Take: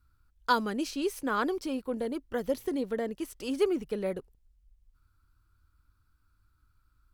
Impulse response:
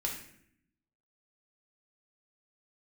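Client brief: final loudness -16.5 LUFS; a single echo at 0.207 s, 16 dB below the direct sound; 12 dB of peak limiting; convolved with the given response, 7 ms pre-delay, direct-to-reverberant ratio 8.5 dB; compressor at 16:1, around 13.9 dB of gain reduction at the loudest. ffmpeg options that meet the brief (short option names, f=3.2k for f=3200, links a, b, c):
-filter_complex "[0:a]acompressor=threshold=-34dB:ratio=16,alimiter=level_in=10dB:limit=-24dB:level=0:latency=1,volume=-10dB,aecho=1:1:207:0.158,asplit=2[a][b];[1:a]atrim=start_sample=2205,adelay=7[c];[b][c]afir=irnorm=-1:irlink=0,volume=-11.5dB[d];[a][d]amix=inputs=2:normalize=0,volume=25.5dB"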